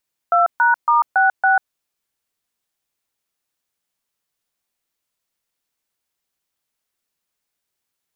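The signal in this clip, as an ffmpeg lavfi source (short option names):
-f lavfi -i "aevalsrc='0.2*clip(min(mod(t,0.279),0.143-mod(t,0.279))/0.002,0,1)*(eq(floor(t/0.279),0)*(sin(2*PI*697*mod(t,0.279))+sin(2*PI*1336*mod(t,0.279)))+eq(floor(t/0.279),1)*(sin(2*PI*941*mod(t,0.279))+sin(2*PI*1477*mod(t,0.279)))+eq(floor(t/0.279),2)*(sin(2*PI*941*mod(t,0.279))+sin(2*PI*1209*mod(t,0.279)))+eq(floor(t/0.279),3)*(sin(2*PI*770*mod(t,0.279))+sin(2*PI*1477*mod(t,0.279)))+eq(floor(t/0.279),4)*(sin(2*PI*770*mod(t,0.279))+sin(2*PI*1477*mod(t,0.279))))':d=1.395:s=44100"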